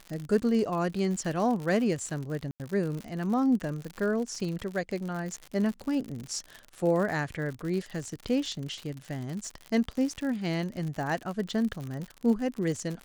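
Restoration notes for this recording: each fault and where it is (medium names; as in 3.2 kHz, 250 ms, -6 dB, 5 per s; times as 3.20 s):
crackle 81 per s -33 dBFS
2.51–2.60 s: dropout 88 ms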